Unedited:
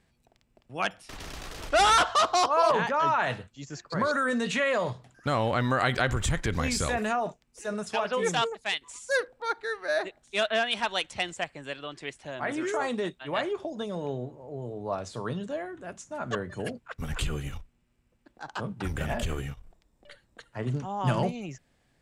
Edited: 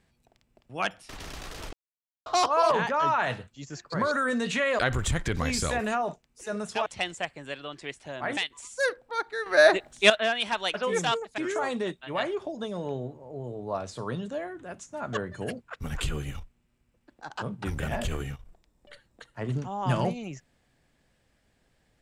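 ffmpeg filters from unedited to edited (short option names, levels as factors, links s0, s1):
-filter_complex "[0:a]asplit=10[s0][s1][s2][s3][s4][s5][s6][s7][s8][s9];[s0]atrim=end=1.73,asetpts=PTS-STARTPTS,afade=t=out:st=1.726:d=0.004:c=hsin[s10];[s1]atrim=start=1.73:end=2.26,asetpts=PTS-STARTPTS,volume=0[s11];[s2]atrim=start=2.26:end=4.792,asetpts=PTS-STARTPTS,afade=t=in:d=0.004:c=hsin[s12];[s3]atrim=start=5.968:end=8.042[s13];[s4]atrim=start=11.048:end=12.562[s14];[s5]atrim=start=8.678:end=9.772[s15];[s6]atrim=start=9.768:end=10.412,asetpts=PTS-STARTPTS,volume=3.35[s16];[s7]atrim=start=10.408:end=11.052[s17];[s8]atrim=start=8.038:end=8.682[s18];[s9]atrim=start=12.558[s19];[s10][s11][s12]concat=n=3:v=0:a=1[s20];[s20][s13]acrossfade=d=0.004:c1=hsin:c2=hsin[s21];[s21][s14]acrossfade=d=0.004:c1=hsin:c2=hsin[s22];[s22][s15]acrossfade=d=0.004:c1=hsin:c2=hsin[s23];[s23][s16]acrossfade=d=0.004:c1=hsin:c2=hsin[s24];[s24][s17]acrossfade=d=0.004:c1=hsin:c2=hsin[s25];[s25][s18]acrossfade=d=0.004:c1=hsin:c2=hsin[s26];[s26][s19]acrossfade=d=0.004:c1=hsin:c2=hsin"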